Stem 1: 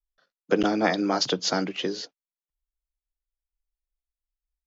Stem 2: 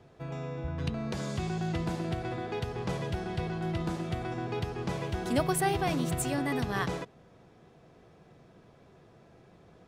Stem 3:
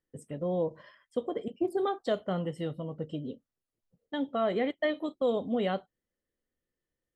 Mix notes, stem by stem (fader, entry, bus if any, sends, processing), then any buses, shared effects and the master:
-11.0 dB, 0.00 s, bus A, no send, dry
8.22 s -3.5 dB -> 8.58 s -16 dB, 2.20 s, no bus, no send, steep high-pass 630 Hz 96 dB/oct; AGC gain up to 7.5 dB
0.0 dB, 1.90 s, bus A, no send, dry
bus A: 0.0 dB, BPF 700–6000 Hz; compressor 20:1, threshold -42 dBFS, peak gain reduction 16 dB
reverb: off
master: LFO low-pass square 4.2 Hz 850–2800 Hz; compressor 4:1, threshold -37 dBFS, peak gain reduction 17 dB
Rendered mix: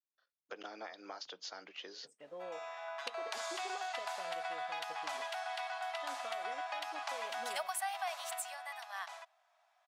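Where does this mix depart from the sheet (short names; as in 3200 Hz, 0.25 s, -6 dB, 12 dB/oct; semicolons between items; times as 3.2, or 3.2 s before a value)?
stem 3 0.0 dB -> -6.5 dB; master: missing LFO low-pass square 4.2 Hz 850–2800 Hz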